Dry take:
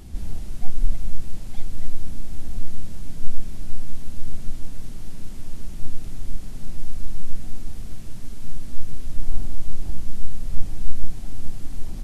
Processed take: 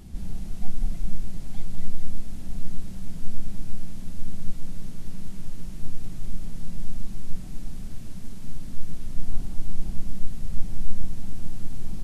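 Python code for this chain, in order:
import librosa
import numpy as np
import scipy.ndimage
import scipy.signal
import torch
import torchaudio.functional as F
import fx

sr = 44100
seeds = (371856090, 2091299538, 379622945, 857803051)

y = fx.peak_eq(x, sr, hz=180.0, db=8.0, octaves=0.47)
y = fx.echo_feedback(y, sr, ms=200, feedback_pct=56, wet_db=-6.5)
y = y * 10.0 ** (-4.0 / 20.0)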